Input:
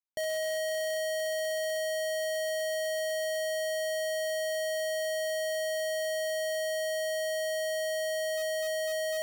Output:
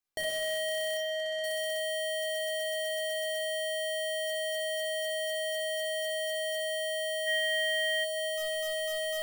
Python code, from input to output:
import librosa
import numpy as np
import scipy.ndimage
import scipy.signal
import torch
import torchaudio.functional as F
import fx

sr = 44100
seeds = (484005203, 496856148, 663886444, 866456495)

p1 = np.clip(x, -10.0 ** (-34.0 / 20.0), 10.0 ** (-34.0 / 20.0))
p2 = fx.air_absorb(p1, sr, metres=81.0, at=(0.97, 1.44))
p3 = fx.rider(p2, sr, range_db=10, speed_s=2.0)
p4 = fx.band_shelf(p3, sr, hz=2200.0, db=8.5, octaves=1.1, at=(7.26, 8.03), fade=0.02)
p5 = p4 + fx.echo_single(p4, sr, ms=156, db=-17.0, dry=0)
p6 = fx.room_shoebox(p5, sr, seeds[0], volume_m3=1900.0, walls='furnished', distance_m=3.7)
p7 = fx.echo_crushed(p6, sr, ms=123, feedback_pct=55, bits=10, wet_db=-15.0)
y = p7 * librosa.db_to_amplitude(2.0)